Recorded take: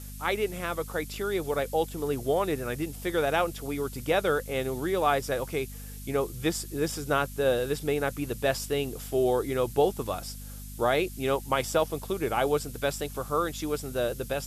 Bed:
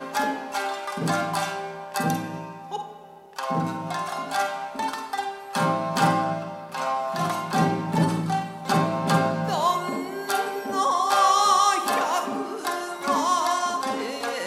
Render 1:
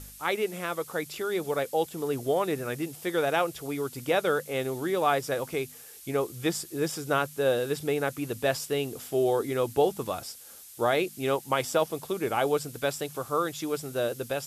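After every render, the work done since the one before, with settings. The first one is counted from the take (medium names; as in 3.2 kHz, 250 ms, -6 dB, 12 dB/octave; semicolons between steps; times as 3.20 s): de-hum 50 Hz, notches 5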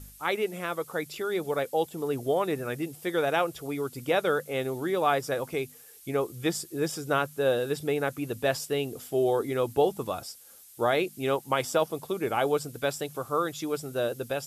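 noise reduction 6 dB, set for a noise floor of -48 dBFS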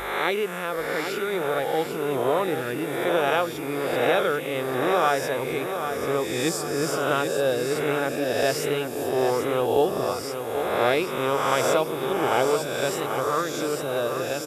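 reverse spectral sustain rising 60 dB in 1.31 s; feedback delay 788 ms, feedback 45%, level -8 dB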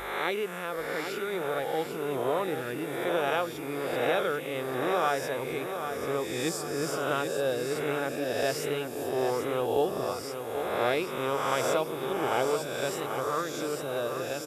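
trim -5.5 dB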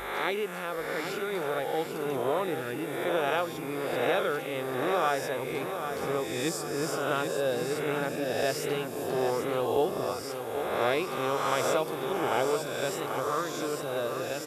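add bed -21 dB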